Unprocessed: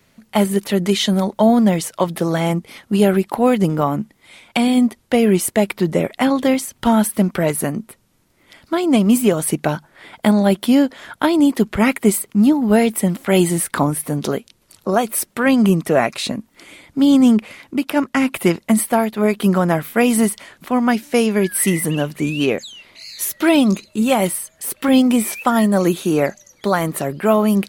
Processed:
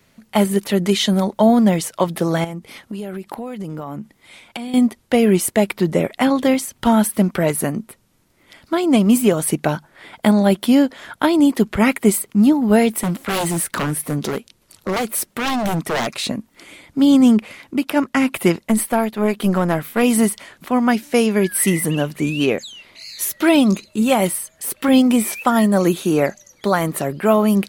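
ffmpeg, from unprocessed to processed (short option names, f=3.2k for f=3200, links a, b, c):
-filter_complex "[0:a]asettb=1/sr,asplit=3[a][b][c];[a]atrim=end=2.444[d];[b]atrim=start=2.44:end=4.74,asetpts=PTS-STARTPTS,afade=t=in:d=0.004:c=qsin,afade=t=out:st=2.296:d=0.004:c=qsin,acompressor=threshold=-25dB:ratio=10:attack=3.2:release=140:knee=1:detection=peak[e];[c]atrim=start=4.736[f];[d][e]acrossfade=d=0.004:c1=hsin:c2=qsin[g];[g][f]acrossfade=d=0.004:c1=qsin:c2=hsin,asettb=1/sr,asplit=3[h][i][j];[h]atrim=end=12.974[k];[i]atrim=start=12.97:end=16.25,asetpts=PTS-STARTPTS,afade=t=in:d=0.004:c=qsin,afade=t=out:st=3.276:d=0.004:c=qsin,aeval=exprs='0.178*(abs(mod(val(0)/0.178+3,4)-2)-1)':c=same[l];[j]atrim=start=16.246[m];[k][l]acrossfade=d=0.004:c1=hsin:c2=qsin[n];[n][m]acrossfade=d=0.004:c1=qsin:c2=hsin,asplit=3[o][p][q];[o]afade=t=out:st=18.6:d=0.02[r];[p]aeval=exprs='(tanh(2.24*val(0)+0.4)-tanh(0.4))/2.24':c=same,afade=t=in:st=18.6:d=0.02,afade=t=out:st=20.02:d=0.02[s];[q]afade=t=in:st=20.02:d=0.02[t];[r][s][t]amix=inputs=3:normalize=0"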